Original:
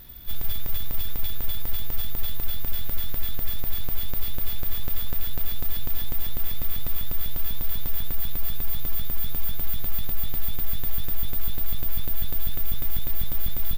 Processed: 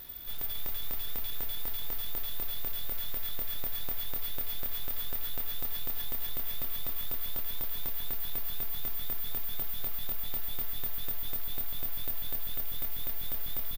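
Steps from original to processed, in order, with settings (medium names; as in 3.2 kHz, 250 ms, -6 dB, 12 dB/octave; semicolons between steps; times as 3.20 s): tone controls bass -10 dB, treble +1 dB; peak limiter -27 dBFS, peak gain reduction 9 dB; delay 275 ms -5 dB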